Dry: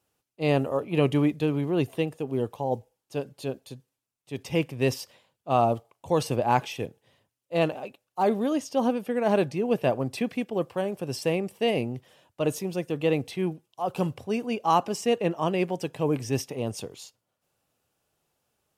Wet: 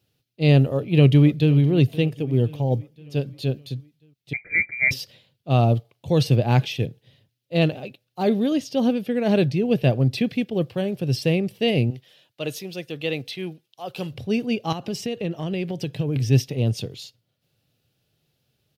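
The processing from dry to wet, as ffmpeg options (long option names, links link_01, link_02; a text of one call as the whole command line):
ffmpeg -i in.wav -filter_complex "[0:a]asplit=2[link_01][link_02];[link_02]afade=type=in:start_time=0.73:duration=0.01,afade=type=out:start_time=1.53:duration=0.01,aecho=0:1:520|1040|1560|2080|2600:0.133352|0.0733437|0.040339|0.0221865|0.0122026[link_03];[link_01][link_03]amix=inputs=2:normalize=0,asettb=1/sr,asplit=3[link_04][link_05][link_06];[link_04]atrim=end=2.044[link_07];[link_05]atrim=start=2.04:end=3.16,asetpts=PTS-STARTPTS,afade=type=in:duration=0.004:curve=qsin,afade=type=out:start_time=1.116:duration=0.004:curve=qsin,bandreject=frequency=4000:width=12[link_08];[link_06]atrim=start=3.156[link_09];[link_07][link_08]acrossfade=duration=0.004:curve1=hsin:curve2=qsin[link_10];[link_10][link_09]acrossfade=duration=0.004:curve1=qsin:curve2=hsin,asettb=1/sr,asplit=3[link_11][link_12][link_13];[link_11]atrim=end=4.334[link_14];[link_12]atrim=start=4.33:end=4.91,asetpts=PTS-STARTPTS,afade=type=in:duration=0.004:curve=qsin,afade=type=out:start_time=0.576:duration=0.004:curve=qsin,lowpass=frequency=2100:width_type=q:width=0.5098,lowpass=frequency=2100:width_type=q:width=0.6013,lowpass=frequency=2100:width_type=q:width=0.9,lowpass=frequency=2100:width_type=q:width=2.563,afreqshift=-2500[link_15];[link_13]atrim=start=4.906[link_16];[link_14][link_15]acrossfade=duration=0.004:curve1=hsin:curve2=qsin[link_17];[link_17][link_16]acrossfade=duration=0.004:curve1=qsin:curve2=hsin,asettb=1/sr,asplit=3[link_18][link_19][link_20];[link_18]atrim=end=11.904[link_21];[link_19]atrim=start=11.9:end=14.13,asetpts=PTS-STARTPTS,afade=type=in:duration=0.004:curve=qsin,afade=type=out:start_time=2.226:duration=0.004:curve=qsin,highpass=frequency=780:poles=1[link_22];[link_20]atrim=start=14.126[link_23];[link_21][link_22]acrossfade=duration=0.004:curve1=hsin:curve2=qsin[link_24];[link_24][link_23]acrossfade=duration=0.004:curve1=qsin:curve2=hsin,asettb=1/sr,asplit=3[link_25][link_26][link_27];[link_25]atrim=end=14.724[link_28];[link_26]atrim=start=14.72:end=16.16,asetpts=PTS-STARTPTS,afade=type=in:duration=0.004:curve=qsin,afade=type=out:start_time=1.436:duration=0.004:curve=qsin,acompressor=threshold=-27dB:ratio=5:attack=3.2:release=140:knee=1:detection=peak[link_29];[link_27]atrim=start=16.156[link_30];[link_28][link_29]acrossfade=duration=0.004:curve1=hsin:curve2=qsin[link_31];[link_31][link_30]acrossfade=duration=0.004:curve1=qsin:curve2=hsin,equalizer=frequency=125:width_type=o:width=1:gain=11,equalizer=frequency=1000:width_type=o:width=1:gain=-12,equalizer=frequency=4000:width_type=o:width=1:gain=8,equalizer=frequency=8000:width_type=o:width=1:gain=-9,volume=4dB" out.wav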